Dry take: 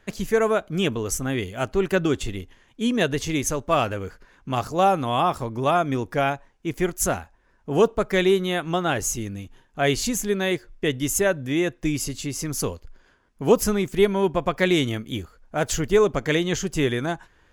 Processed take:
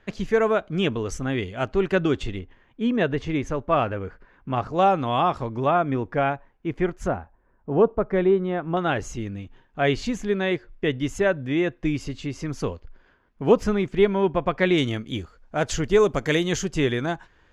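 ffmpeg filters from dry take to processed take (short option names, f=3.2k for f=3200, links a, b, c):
-af "asetnsamples=n=441:p=0,asendcmd='2.39 lowpass f 2200;4.73 lowpass f 3800;5.66 lowpass f 2200;7.08 lowpass f 1200;8.77 lowpass f 3100;14.78 lowpass f 6000;15.99 lowpass f 11000;16.65 lowpass f 5500',lowpass=4k"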